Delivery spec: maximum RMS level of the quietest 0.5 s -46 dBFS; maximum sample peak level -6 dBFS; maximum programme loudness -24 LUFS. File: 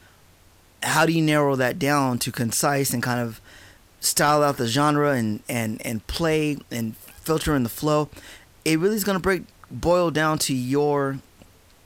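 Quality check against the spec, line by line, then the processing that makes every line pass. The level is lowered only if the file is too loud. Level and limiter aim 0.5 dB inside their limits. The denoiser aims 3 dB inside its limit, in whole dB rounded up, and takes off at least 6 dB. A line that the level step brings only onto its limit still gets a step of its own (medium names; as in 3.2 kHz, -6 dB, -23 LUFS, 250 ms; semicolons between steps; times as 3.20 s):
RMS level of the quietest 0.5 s -54 dBFS: pass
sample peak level -8.5 dBFS: pass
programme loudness -22.5 LUFS: fail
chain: trim -2 dB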